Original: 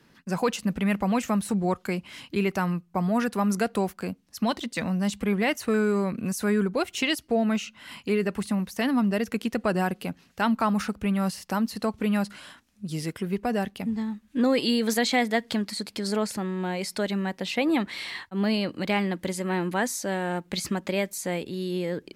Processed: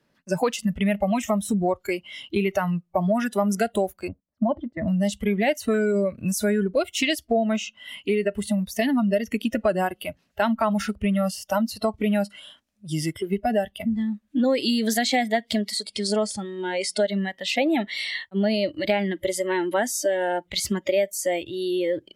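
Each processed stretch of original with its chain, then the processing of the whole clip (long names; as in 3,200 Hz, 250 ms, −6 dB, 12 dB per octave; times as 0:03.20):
0:04.08–0:04.88: low-pass filter 1,100 Hz + parametric band 61 Hz +5 dB 2.2 octaves + noise gate −53 dBFS, range −14 dB
0:15.86–0:17.00: linear-phase brick-wall low-pass 11,000 Hz + parametric band 790 Hz −2 dB 1.5 octaves
whole clip: noise reduction from a noise print of the clip's start 17 dB; parametric band 600 Hz +10 dB 0.38 octaves; downward compressor 3 to 1, threshold −27 dBFS; level +6.5 dB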